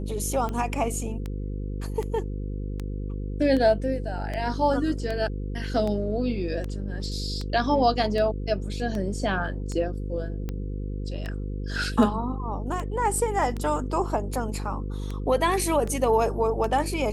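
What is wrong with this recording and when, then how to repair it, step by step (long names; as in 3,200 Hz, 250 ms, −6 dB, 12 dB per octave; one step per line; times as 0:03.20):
mains buzz 50 Hz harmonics 10 −31 dBFS
scratch tick 78 rpm −19 dBFS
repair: click removal
hum removal 50 Hz, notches 10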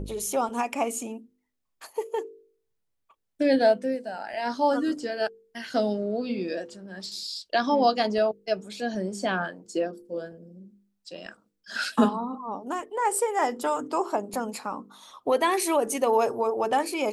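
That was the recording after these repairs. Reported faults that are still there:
none of them is left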